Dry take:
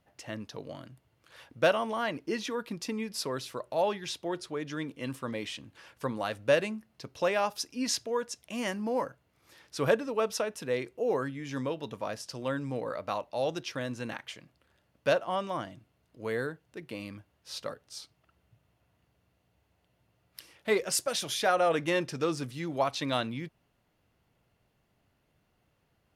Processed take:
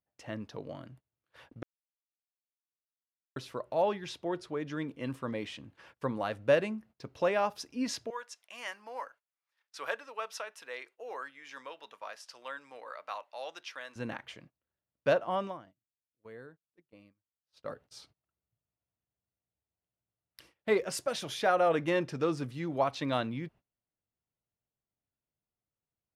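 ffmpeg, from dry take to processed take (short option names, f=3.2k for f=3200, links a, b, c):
-filter_complex "[0:a]asettb=1/sr,asplit=3[a][b][c];[a]atrim=end=8.104[d];[b]atrim=start=8.1:end=13.96,asetpts=PTS-STARTPTS,afade=t=in:d=0.004:c=qsin,afade=t=out:st=5.856:d=0.004:c=qsin,highpass=1.1k[e];[c]atrim=start=13.956[f];[d][e]acrossfade=d=0.004:c1=hsin:c2=qsin[g];[g][f]acrossfade=d=0.004:c1=qsin:c2=hsin,asplit=5[h][i][j][k][l];[h]atrim=end=1.63,asetpts=PTS-STARTPTS,afade=t=out:st=1.626:d=0.004:c=hsin[m];[i]atrim=start=1.63:end=3.36,asetpts=PTS-STARTPTS,volume=0[n];[j]atrim=start=3.36:end=15.62,asetpts=PTS-STARTPTS,afade=t=in:d=0.004:c=hsin,afade=t=out:st=12.11:d=0.15:c=qua:silence=0.16788[o];[k]atrim=start=15.62:end=17.55,asetpts=PTS-STARTPTS,volume=-15.5dB[p];[l]atrim=start=17.55,asetpts=PTS-STARTPTS,afade=t=in:d=0.15:c=qua:silence=0.16788[q];[m][n][o][p][q]concat=n=5:v=0:a=1,agate=range=-23dB:threshold=-54dB:ratio=16:detection=peak,highshelf=f=3.5k:g=-11"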